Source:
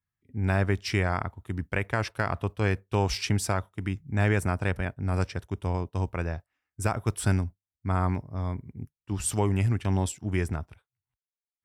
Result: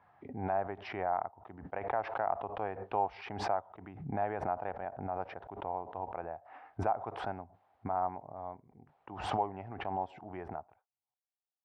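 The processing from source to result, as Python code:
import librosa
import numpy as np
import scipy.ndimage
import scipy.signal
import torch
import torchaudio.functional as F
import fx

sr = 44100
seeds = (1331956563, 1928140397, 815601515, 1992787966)

y = fx.bandpass_q(x, sr, hz=760.0, q=5.0)
y = fx.air_absorb(y, sr, metres=310.0)
y = fx.pre_swell(y, sr, db_per_s=67.0)
y = y * 10.0 ** (5.5 / 20.0)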